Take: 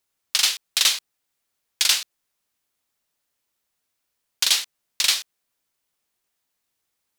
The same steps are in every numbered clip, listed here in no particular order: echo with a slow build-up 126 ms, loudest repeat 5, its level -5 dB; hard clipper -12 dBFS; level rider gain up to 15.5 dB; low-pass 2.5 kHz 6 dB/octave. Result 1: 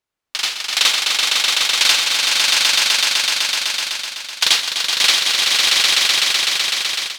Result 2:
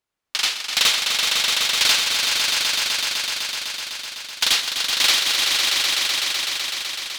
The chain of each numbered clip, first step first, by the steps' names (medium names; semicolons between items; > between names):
low-pass > hard clipper > echo with a slow build-up > level rider; low-pass > level rider > hard clipper > echo with a slow build-up